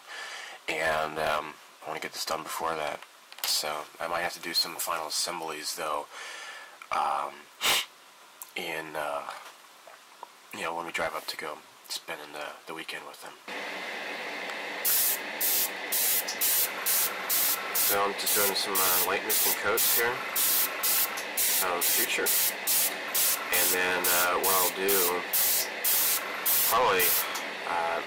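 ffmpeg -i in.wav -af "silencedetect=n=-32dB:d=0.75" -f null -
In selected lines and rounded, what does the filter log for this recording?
silence_start: 9.37
silence_end: 10.23 | silence_duration: 0.86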